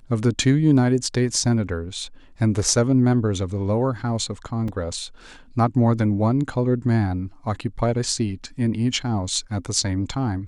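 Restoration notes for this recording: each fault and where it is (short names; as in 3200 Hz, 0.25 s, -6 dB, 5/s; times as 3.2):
4.68 gap 3.7 ms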